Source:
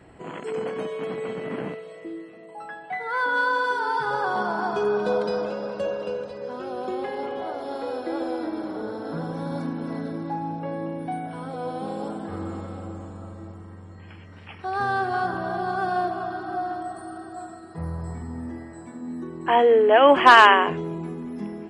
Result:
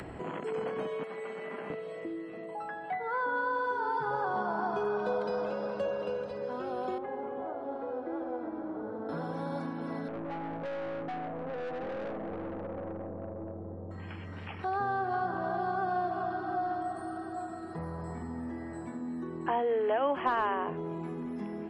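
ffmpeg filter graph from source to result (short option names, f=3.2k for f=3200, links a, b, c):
-filter_complex "[0:a]asettb=1/sr,asplit=3[a][b][c];[a]atrim=end=1.034[d];[b]atrim=start=1.03:end=1.7,asetpts=PTS-STARTPTS,afade=t=in:d=0.004:c=qsin,afade=t=out:st=0.666:d=0.004:c=qsin,highpass=f=1.4k:p=1,equalizer=f=3.9k:t=o:w=1.5:g=-5.5,aecho=1:1:5:0.44,atrim=end_sample=29547[e];[c]atrim=start=1.696[f];[d][e]acrossfade=d=0.004:c1=hsin:c2=qsin[g];[g][f]acrossfade=d=0.004:c1=qsin:c2=hsin,asettb=1/sr,asplit=3[h][i][j];[h]atrim=end=6.984[k];[i]atrim=start=6.98:end=9.09,asetpts=PTS-STARTPTS,afade=t=in:d=0.004:c=qsin,afade=t=out:st=2.106:d=0.004:c=qsin,lowpass=1.5k,flanger=delay=2.9:depth=1.7:regen=75:speed=1.7:shape=triangular[l];[j]atrim=start=9.086[m];[k][l]acrossfade=d=0.004:c1=hsin:c2=qsin[n];[n][m]acrossfade=d=0.004:c1=qsin:c2=hsin,asettb=1/sr,asplit=3[o][p][q];[o]atrim=end=10.084[r];[p]atrim=start=10.08:end=13.91,asetpts=PTS-STARTPTS,afade=t=in:d=0.004:c=qsin,afade=t=out:st=3.826:d=0.004:c=qsin,lowpass=f=590:t=q:w=3.1,aeval=exprs='(tanh(44.7*val(0)+0.35)-tanh(0.35))/44.7':c=same[s];[q]atrim=start=13.906[t];[r][s]acrossfade=d=0.004:c1=hsin:c2=qsin[u];[u][t]acrossfade=d=0.004:c1=qsin:c2=hsin,acrossover=split=180|560|1300[v][w][x][y];[v]acompressor=threshold=-46dB:ratio=4[z];[w]acompressor=threshold=-37dB:ratio=4[aa];[x]acompressor=threshold=-30dB:ratio=4[ab];[y]acompressor=threshold=-44dB:ratio=4[ac];[z][aa][ab][ac]amix=inputs=4:normalize=0,highshelf=f=4k:g=-9.5,acompressor=mode=upward:threshold=-33dB:ratio=2.5,volume=-1.5dB"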